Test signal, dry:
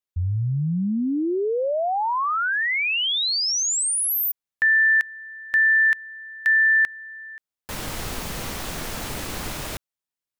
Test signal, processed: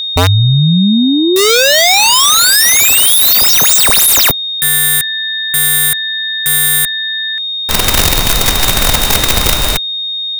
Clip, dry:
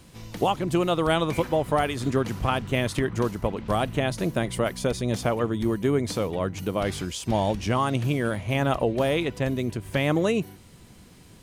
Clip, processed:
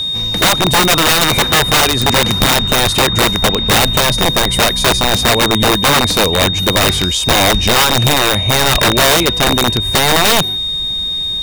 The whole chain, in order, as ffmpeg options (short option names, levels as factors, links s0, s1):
-af "asubboost=boost=3:cutoff=64,acontrast=82,aeval=exprs='(mod(4.73*val(0)+1,2)-1)/4.73':c=same,aeval=exprs='val(0)+0.0631*sin(2*PI*3700*n/s)':c=same,equalizer=f=310:t=o:w=0.61:g=-2.5,volume=2.51"